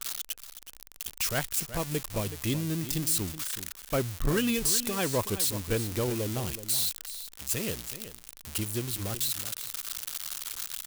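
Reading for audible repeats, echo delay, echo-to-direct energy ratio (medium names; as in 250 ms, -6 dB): 1, 374 ms, -12.5 dB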